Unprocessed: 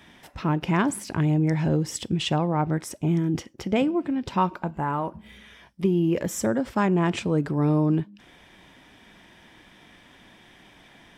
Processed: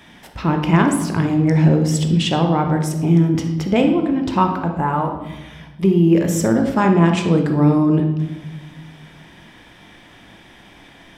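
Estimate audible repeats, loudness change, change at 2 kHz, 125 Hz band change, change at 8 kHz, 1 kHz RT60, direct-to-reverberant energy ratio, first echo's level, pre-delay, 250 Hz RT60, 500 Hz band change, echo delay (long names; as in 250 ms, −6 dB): no echo audible, +8.0 dB, +6.5 dB, +8.5 dB, +6.0 dB, 0.95 s, 4.0 dB, no echo audible, 17 ms, 1.6 s, +7.0 dB, no echo audible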